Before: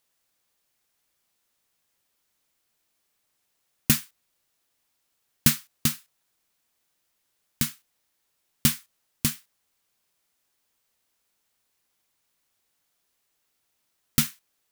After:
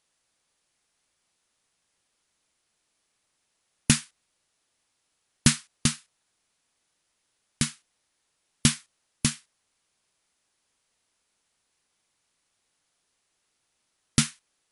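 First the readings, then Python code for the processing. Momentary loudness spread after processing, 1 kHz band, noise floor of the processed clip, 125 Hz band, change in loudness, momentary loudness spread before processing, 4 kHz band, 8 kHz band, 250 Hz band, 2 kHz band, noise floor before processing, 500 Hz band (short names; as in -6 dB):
9 LU, +2.0 dB, -77 dBFS, +2.0 dB, -0.5 dB, 10 LU, +2.0 dB, +1.5 dB, +2.0 dB, +2.0 dB, -75 dBFS, +2.0 dB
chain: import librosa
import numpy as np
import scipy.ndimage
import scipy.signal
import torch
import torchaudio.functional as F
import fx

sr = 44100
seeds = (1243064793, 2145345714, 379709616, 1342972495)

y = fx.brickwall_lowpass(x, sr, high_hz=11000.0)
y = F.gain(torch.from_numpy(y), 2.0).numpy()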